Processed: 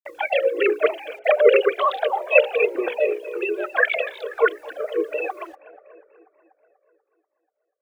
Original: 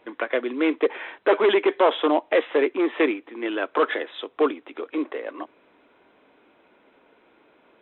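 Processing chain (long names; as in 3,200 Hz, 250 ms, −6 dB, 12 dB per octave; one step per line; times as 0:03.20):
three sine waves on the formant tracks
high-pass filter 210 Hz 12 dB per octave
mains-hum notches 60/120/180/240/300/360/420/480/540/600 Hz
noise gate with hold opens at −39 dBFS
parametric band 460 Hz +2 dB 0.52 octaves
in parallel at −2.5 dB: downward compressor 10 to 1, threshold −32 dBFS, peak gain reduction 20.5 dB
on the sum: formants moved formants +5 semitones
bit reduction 10 bits
on a send: bucket-brigade delay 243 ms, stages 4,096, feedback 62%, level −17.5 dB
on the sum: flanger whose copies keep moving one way falling 1.1 Hz
level +6.5 dB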